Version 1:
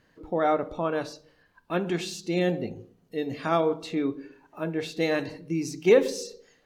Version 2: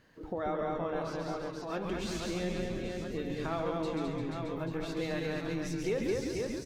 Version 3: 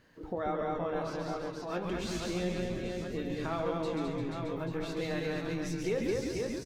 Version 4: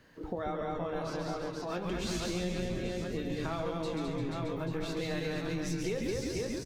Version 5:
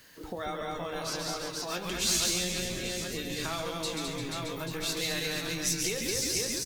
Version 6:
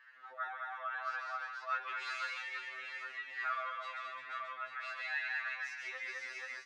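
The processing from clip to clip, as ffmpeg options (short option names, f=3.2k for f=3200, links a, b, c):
-filter_complex "[0:a]asplit=2[a][b];[b]aecho=0:1:210|483|837.9|1299|1899:0.631|0.398|0.251|0.158|0.1[c];[a][c]amix=inputs=2:normalize=0,acompressor=threshold=-38dB:ratio=2.5,asplit=2[d][e];[e]asplit=5[f][g][h][i][j];[f]adelay=137,afreqshift=-150,volume=-4dB[k];[g]adelay=274,afreqshift=-300,volume=-12.9dB[l];[h]adelay=411,afreqshift=-450,volume=-21.7dB[m];[i]adelay=548,afreqshift=-600,volume=-30.6dB[n];[j]adelay=685,afreqshift=-750,volume=-39.5dB[o];[k][l][m][n][o]amix=inputs=5:normalize=0[p];[d][p]amix=inputs=2:normalize=0"
-filter_complex "[0:a]asplit=2[a][b];[b]adelay=17,volume=-11.5dB[c];[a][c]amix=inputs=2:normalize=0"
-filter_complex "[0:a]acrossover=split=150|3000[a][b][c];[b]acompressor=threshold=-37dB:ratio=3[d];[a][d][c]amix=inputs=3:normalize=0,volume=3dB"
-af "crystalizer=i=9:c=0,volume=-3dB"
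-af "asuperpass=centerf=1500:order=4:qfactor=1.5,afftfilt=real='re*2.45*eq(mod(b,6),0)':imag='im*2.45*eq(mod(b,6),0)':win_size=2048:overlap=0.75,volume=4.5dB"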